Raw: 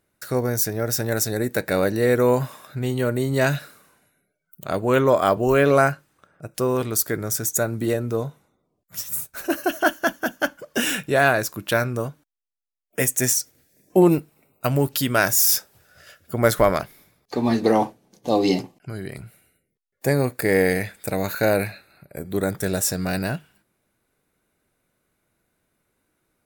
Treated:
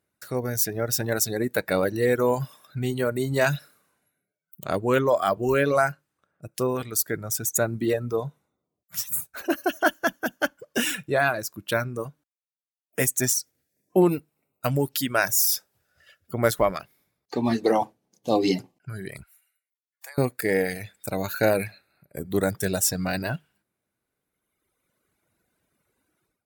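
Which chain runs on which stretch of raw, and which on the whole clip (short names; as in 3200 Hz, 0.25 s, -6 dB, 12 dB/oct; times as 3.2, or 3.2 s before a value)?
19.23–20.18 HPF 900 Hz 24 dB/oct + compressor, threshold -39 dBFS
whole clip: AGC gain up to 8.5 dB; reverb removal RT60 1.8 s; HPF 44 Hz; gain -6.5 dB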